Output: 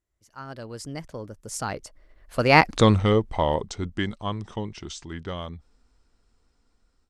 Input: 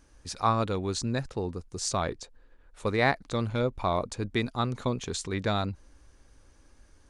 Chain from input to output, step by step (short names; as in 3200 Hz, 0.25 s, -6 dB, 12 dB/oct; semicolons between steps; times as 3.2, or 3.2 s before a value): Doppler pass-by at 2.78, 57 m/s, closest 10 m; AGC gain up to 16.5 dB